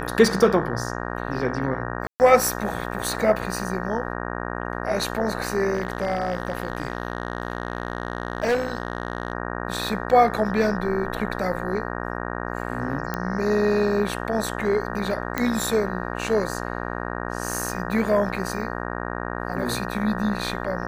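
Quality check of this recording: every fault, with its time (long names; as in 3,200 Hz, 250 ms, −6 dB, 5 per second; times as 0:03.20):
mains buzz 60 Hz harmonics 31 −30 dBFS
0:02.07–0:02.20: drop-out 129 ms
0:05.75–0:09.33: clipping −17.5 dBFS
0:13.14: click −13 dBFS
0:15.38: click −9 dBFS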